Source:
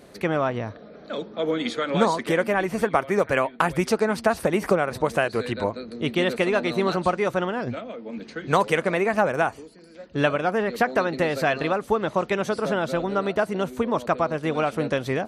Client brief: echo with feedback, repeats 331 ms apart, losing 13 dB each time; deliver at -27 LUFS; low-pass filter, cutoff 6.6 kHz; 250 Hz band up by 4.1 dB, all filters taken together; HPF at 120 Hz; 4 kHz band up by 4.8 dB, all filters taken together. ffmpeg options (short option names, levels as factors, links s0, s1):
-af "highpass=120,lowpass=6600,equalizer=f=250:t=o:g=6,equalizer=f=4000:t=o:g=6.5,aecho=1:1:331|662|993:0.224|0.0493|0.0108,volume=0.596"